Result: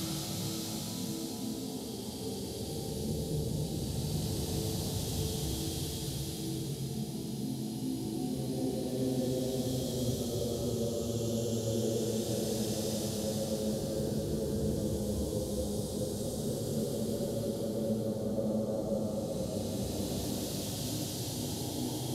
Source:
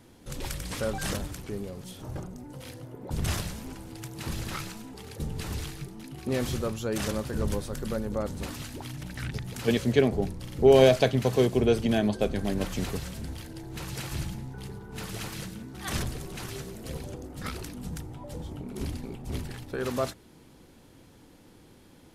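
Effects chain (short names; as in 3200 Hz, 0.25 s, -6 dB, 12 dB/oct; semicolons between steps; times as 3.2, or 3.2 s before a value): HPF 110 Hz 12 dB/oct; band shelf 1600 Hz -16 dB; compressor, threshold -36 dBFS, peak gain reduction 20.5 dB; Paulstretch 5.2×, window 0.50 s, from 4.59; on a send: multi-head echo 0.213 s, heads second and third, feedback 46%, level -9 dB; on the sum: gain +5 dB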